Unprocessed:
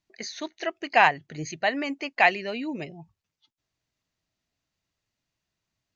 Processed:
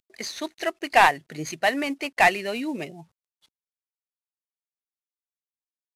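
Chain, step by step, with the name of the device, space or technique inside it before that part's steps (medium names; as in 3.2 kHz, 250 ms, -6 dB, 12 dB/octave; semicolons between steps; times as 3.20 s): early wireless headset (high-pass 170 Hz 12 dB/octave; CVSD coder 64 kbps); trim +3 dB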